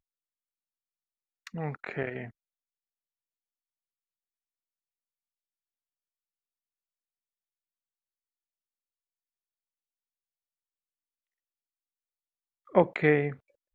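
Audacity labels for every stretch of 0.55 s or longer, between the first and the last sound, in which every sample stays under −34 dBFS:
2.250000	12.750000	silence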